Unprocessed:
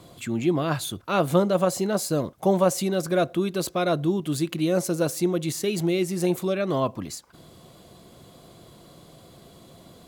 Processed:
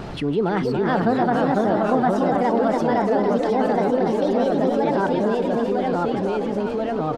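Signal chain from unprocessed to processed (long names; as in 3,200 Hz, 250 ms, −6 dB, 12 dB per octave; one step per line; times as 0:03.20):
gliding playback speed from 124% → 157%
high-shelf EQ 5,100 Hz −5 dB
on a send: echo with shifted repeats 285 ms, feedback 56%, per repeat +39 Hz, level −7 dB
on the sum: delay with pitch and tempo change per echo 370 ms, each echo −2 semitones, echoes 2
background noise pink −50 dBFS
head-to-tape spacing loss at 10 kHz 25 dB
envelope flattener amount 50%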